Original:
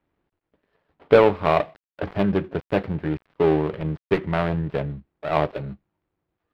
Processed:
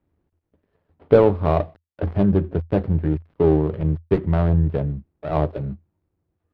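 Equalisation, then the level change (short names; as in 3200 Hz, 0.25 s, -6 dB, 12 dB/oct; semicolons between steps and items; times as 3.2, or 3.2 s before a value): tilt shelf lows +6 dB, about 640 Hz; bell 83 Hz +10.5 dB 0.34 oct; dynamic EQ 2300 Hz, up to -5 dB, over -40 dBFS, Q 1.5; -1.0 dB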